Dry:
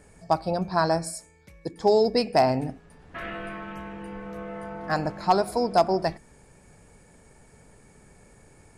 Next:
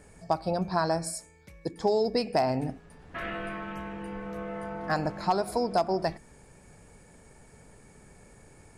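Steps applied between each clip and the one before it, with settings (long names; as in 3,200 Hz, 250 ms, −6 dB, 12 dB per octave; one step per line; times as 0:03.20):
downward compressor 2.5 to 1, threshold −24 dBFS, peak gain reduction 7 dB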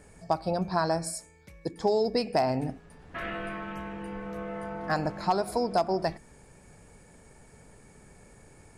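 no processing that can be heard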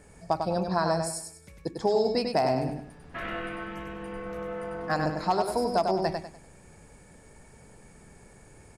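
repeating echo 98 ms, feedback 31%, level −5 dB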